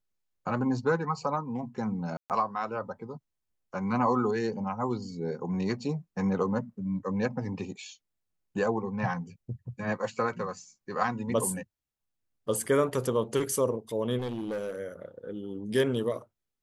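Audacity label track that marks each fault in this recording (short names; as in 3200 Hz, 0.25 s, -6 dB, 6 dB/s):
2.170000	2.300000	gap 0.128 s
14.180000	14.790000	clipped -29.5 dBFS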